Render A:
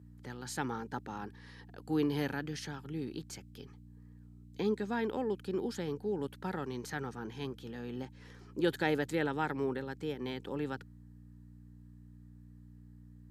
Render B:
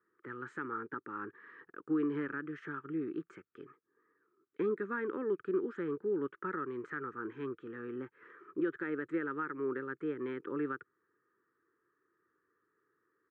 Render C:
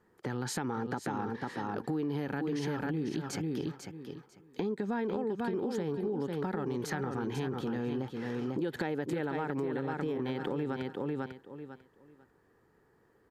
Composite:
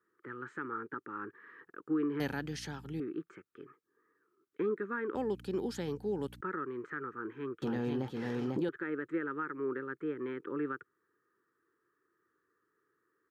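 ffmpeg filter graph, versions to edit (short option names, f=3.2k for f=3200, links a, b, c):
-filter_complex "[0:a]asplit=2[a][b];[1:a]asplit=4[c][d][e][f];[c]atrim=end=2.202[g];[a]atrim=start=2.198:end=3.002[h];[d]atrim=start=2.998:end=5.152[i];[b]atrim=start=5.148:end=6.412[j];[e]atrim=start=6.408:end=7.622[k];[2:a]atrim=start=7.618:end=8.692[l];[f]atrim=start=8.688[m];[g][h]acrossfade=d=0.004:c1=hsin:c2=hsin[n];[n][i]acrossfade=d=0.004:c1=hsin:c2=hsin[o];[o][j]acrossfade=d=0.004:c1=hsin:c2=hsin[p];[p][k]acrossfade=d=0.004:c1=hsin:c2=hsin[q];[q][l]acrossfade=d=0.004:c1=hsin:c2=hsin[r];[r][m]acrossfade=d=0.004:c1=hsin:c2=hsin"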